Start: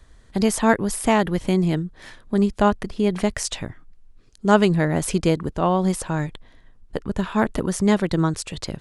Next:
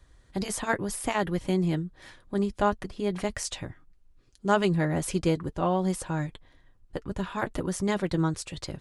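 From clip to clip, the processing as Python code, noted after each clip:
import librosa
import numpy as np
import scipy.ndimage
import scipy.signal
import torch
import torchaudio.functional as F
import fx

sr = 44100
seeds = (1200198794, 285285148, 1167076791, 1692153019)

y = fx.notch_comb(x, sr, f0_hz=220.0)
y = F.gain(torch.from_numpy(y), -5.0).numpy()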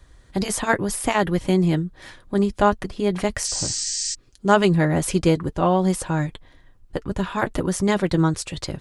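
y = fx.spec_repair(x, sr, seeds[0], start_s=3.5, length_s=0.61, low_hz=1600.0, high_hz=8500.0, source='before')
y = F.gain(torch.from_numpy(y), 7.0).numpy()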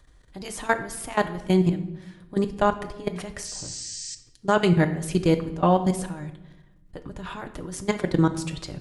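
y = fx.level_steps(x, sr, step_db=18)
y = fx.room_shoebox(y, sr, seeds[1], volume_m3=360.0, walls='mixed', distance_m=0.44)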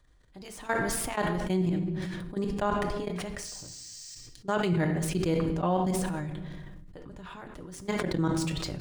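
y = scipy.signal.medfilt(x, 3)
y = fx.sustainer(y, sr, db_per_s=21.0)
y = F.gain(torch.from_numpy(y), -8.5).numpy()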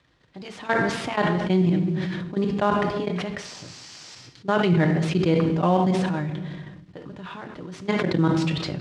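y = fx.cvsd(x, sr, bps=64000)
y = scipy.signal.sosfilt(scipy.signal.cheby1(2, 1.0, [130.0, 3700.0], 'bandpass', fs=sr, output='sos'), y)
y = F.gain(torch.from_numpy(y), 7.5).numpy()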